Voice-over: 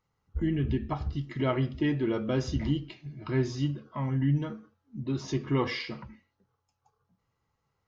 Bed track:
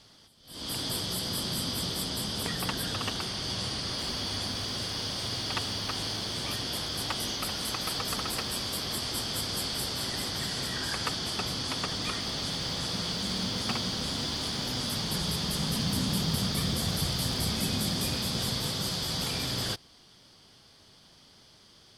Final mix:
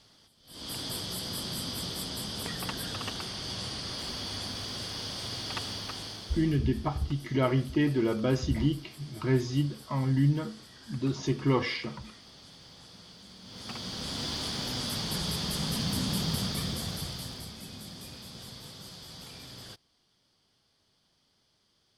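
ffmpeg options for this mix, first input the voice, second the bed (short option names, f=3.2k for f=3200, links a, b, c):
-filter_complex "[0:a]adelay=5950,volume=1.5dB[a];[1:a]volume=14dB,afade=t=out:st=5.71:d=0.89:silence=0.16788,afade=t=in:st=13.43:d=0.87:silence=0.133352,afade=t=out:st=16.3:d=1.23:silence=0.223872[b];[a][b]amix=inputs=2:normalize=0"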